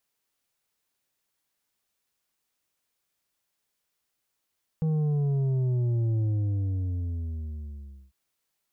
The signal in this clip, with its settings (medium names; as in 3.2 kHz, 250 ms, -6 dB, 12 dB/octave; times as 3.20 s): sub drop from 160 Hz, over 3.30 s, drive 6.5 dB, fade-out 1.92 s, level -23.5 dB